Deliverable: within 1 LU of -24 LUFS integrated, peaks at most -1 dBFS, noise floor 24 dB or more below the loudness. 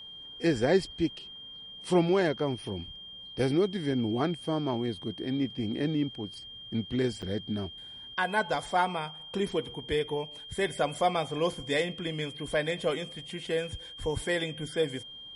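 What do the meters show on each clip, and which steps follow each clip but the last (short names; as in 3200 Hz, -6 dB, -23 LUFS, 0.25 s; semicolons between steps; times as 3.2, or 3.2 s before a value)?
dropouts 1; longest dropout 7.1 ms; steady tone 3200 Hz; tone level -43 dBFS; loudness -30.5 LUFS; peak -12.5 dBFS; loudness target -24.0 LUFS
-> interpolate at 7.22, 7.1 ms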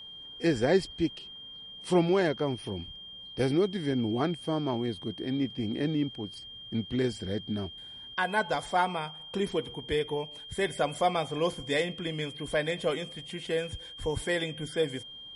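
dropouts 0; steady tone 3200 Hz; tone level -43 dBFS
-> notch 3200 Hz, Q 30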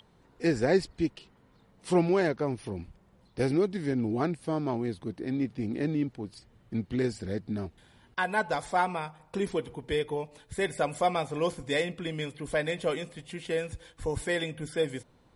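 steady tone none; loudness -31.0 LUFS; peak -13.0 dBFS; loudness target -24.0 LUFS
-> gain +7 dB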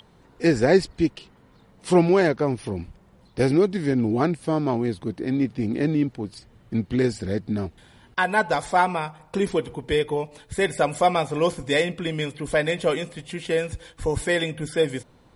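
loudness -24.0 LUFS; peak -6.0 dBFS; noise floor -55 dBFS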